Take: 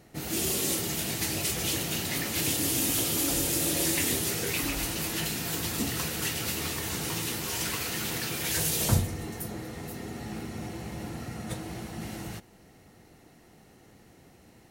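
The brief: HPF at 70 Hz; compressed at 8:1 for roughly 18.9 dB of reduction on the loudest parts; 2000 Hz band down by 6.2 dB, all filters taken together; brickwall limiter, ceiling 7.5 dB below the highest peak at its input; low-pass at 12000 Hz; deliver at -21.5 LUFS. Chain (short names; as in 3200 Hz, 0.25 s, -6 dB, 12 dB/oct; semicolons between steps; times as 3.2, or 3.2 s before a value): HPF 70 Hz; LPF 12000 Hz; bell 2000 Hz -8 dB; compressor 8:1, threshold -39 dBFS; gain +22 dB; limiter -13 dBFS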